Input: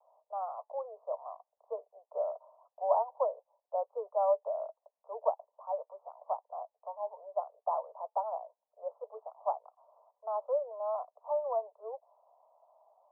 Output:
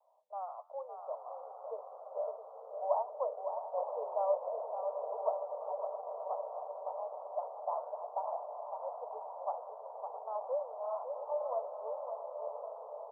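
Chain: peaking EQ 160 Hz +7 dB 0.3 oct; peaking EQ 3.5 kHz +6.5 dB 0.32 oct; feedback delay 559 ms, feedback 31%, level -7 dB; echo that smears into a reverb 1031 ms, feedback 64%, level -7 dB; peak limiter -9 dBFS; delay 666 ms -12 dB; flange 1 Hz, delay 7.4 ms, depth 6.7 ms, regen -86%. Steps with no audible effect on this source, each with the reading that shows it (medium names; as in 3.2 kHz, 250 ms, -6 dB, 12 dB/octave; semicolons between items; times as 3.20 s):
peaking EQ 160 Hz: input has nothing below 400 Hz; peaking EQ 3.5 kHz: input has nothing above 1.2 kHz; peak limiter -9 dBFS: peak at its input -14.5 dBFS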